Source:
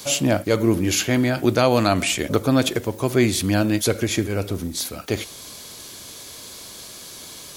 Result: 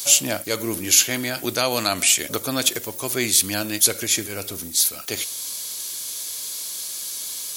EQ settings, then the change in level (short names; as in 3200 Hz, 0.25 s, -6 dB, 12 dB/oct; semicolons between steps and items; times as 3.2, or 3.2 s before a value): tilt +2.5 dB/oct; high shelf 3900 Hz +8 dB; -4.5 dB